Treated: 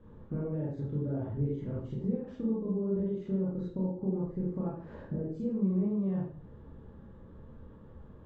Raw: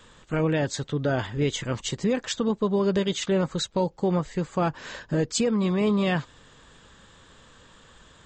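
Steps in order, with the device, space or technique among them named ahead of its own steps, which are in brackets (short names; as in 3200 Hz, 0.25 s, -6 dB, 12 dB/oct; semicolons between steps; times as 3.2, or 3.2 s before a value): notch 700 Hz, Q 12; television next door (compressor 6:1, threshold -35 dBFS, peak gain reduction 14.5 dB; LPF 410 Hz 12 dB/oct; reverb RT60 0.50 s, pre-delay 26 ms, DRR -6.5 dB); high shelf 5400 Hz +10.5 dB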